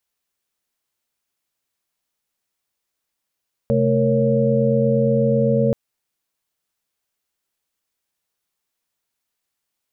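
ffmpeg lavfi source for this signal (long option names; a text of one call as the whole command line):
ffmpeg -f lavfi -i "aevalsrc='0.1*(sin(2*PI*130.81*t)+sin(2*PI*220*t)+sin(2*PI*466.16*t)+sin(2*PI*554.37*t))':duration=2.03:sample_rate=44100" out.wav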